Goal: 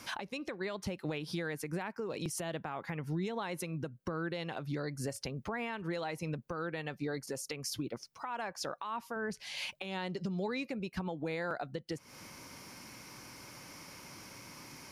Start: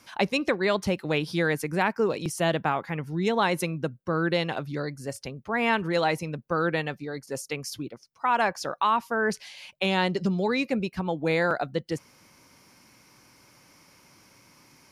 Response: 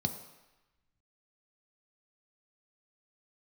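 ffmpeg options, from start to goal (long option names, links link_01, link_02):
-filter_complex "[0:a]asettb=1/sr,asplit=3[link_01][link_02][link_03];[link_01]atrim=end=9.164[link_04];[link_02]atrim=start=9.16:end=9.58,asetpts=PTS-STARTPTS,afade=type=in:duration=0.004:curve=qsin,afade=type=out:start_time=0.416:duration=0.004:curve=qsin,lowshelf=frequency=160:gain=11[link_05];[link_03]atrim=start=9.576[link_06];[link_04][link_05]acrossfade=duration=0.004:curve1=hsin:curve2=qsin[link_07];[link_07][link_06]acrossfade=duration=0.004:curve1=qsin:curve2=hsin,acompressor=threshold=-36dB:ratio=16,alimiter=level_in=9.5dB:limit=-24dB:level=0:latency=1:release=221,volume=-9.5dB,volume=6dB"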